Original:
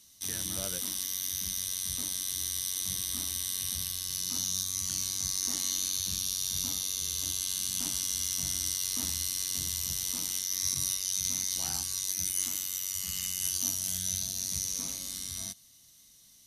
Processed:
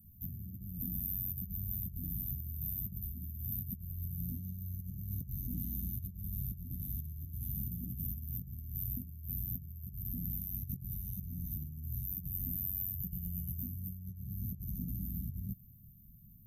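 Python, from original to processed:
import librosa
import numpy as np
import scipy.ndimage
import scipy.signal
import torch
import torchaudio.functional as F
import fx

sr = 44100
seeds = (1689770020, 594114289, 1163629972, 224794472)

y = scipy.signal.sosfilt(scipy.signal.cheby2(4, 50, [460.0, 9600.0], 'bandstop', fs=sr, output='sos'), x)
y = fx.over_compress(y, sr, threshold_db=-54.0, ratio=-1.0)
y = y * 10.0 ** (13.5 / 20.0)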